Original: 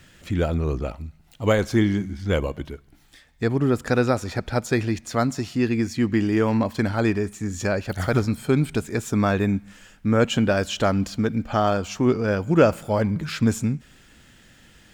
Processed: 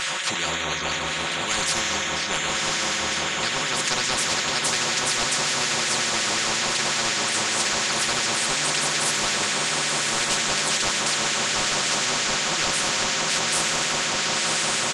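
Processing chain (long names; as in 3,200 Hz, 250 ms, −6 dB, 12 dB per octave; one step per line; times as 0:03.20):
feedback delay with all-pass diffusion 1,092 ms, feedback 68%, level −4.5 dB
downsampling to 22,050 Hz
on a send at −4.5 dB: EQ curve with evenly spaced ripples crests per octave 1.1, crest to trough 17 dB + convolution reverb RT60 1.8 s, pre-delay 3 ms
on the sum: auto-filter high-pass sine 5.5 Hz 910–1,900 Hz
comb filter 5.4 ms, depth 94%
reversed playback
upward compression, threshold −24 dBFS
reversed playback
spectral tilt −2.5 dB per octave
soft clipping −5.5 dBFS, distortion −25 dB
every bin compressed towards the loudest bin 10 to 1
level −2.5 dB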